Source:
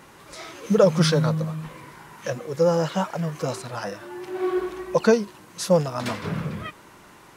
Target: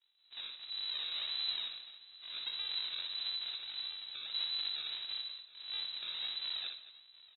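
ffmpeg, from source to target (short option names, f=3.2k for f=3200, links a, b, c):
-af "agate=range=-33dB:threshold=-35dB:ratio=3:detection=peak,tiltshelf=f=750:g=-3,bandreject=f=60:t=h:w=6,bandreject=f=120:t=h:w=6,bandreject=f=180:t=h:w=6,bandreject=f=240:t=h:w=6,bandreject=f=300:t=h:w=6,bandreject=f=360:t=h:w=6,bandreject=f=420:t=h:w=6,bandreject=f=480:t=h:w=6,bandreject=f=540:t=h:w=6,acompressor=threshold=-25dB:ratio=3,alimiter=level_in=4.5dB:limit=-24dB:level=0:latency=1:release=44,volume=-4.5dB,aresample=11025,acrusher=samples=37:mix=1:aa=0.000001:lfo=1:lforange=37:lforate=1.6,aresample=44100,asetrate=83250,aresample=44100,atempo=0.529732,afreqshift=-83,aecho=1:1:60|223|723:0.501|0.178|0.112,lowpass=f=3.4k:t=q:w=0.5098,lowpass=f=3.4k:t=q:w=0.6013,lowpass=f=3.4k:t=q:w=0.9,lowpass=f=3.4k:t=q:w=2.563,afreqshift=-4000,volume=-3.5dB"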